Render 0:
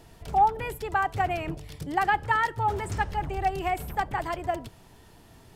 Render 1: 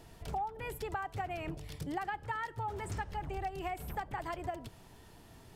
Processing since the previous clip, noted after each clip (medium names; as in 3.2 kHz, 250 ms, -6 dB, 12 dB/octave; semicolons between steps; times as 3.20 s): compression 6:1, threshold -32 dBFS, peak gain reduction 15 dB; trim -3 dB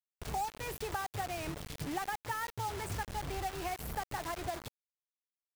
bit crusher 7-bit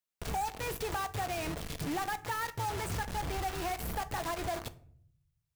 reverberation RT60 0.60 s, pre-delay 4 ms, DRR 11 dB; in parallel at -5 dB: wavefolder -35.5 dBFS